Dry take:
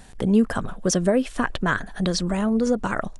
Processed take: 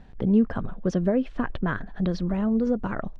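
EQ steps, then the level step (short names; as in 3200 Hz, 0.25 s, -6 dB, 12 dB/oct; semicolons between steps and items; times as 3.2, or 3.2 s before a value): air absorption 240 m; low shelf 490 Hz +7 dB; -7.0 dB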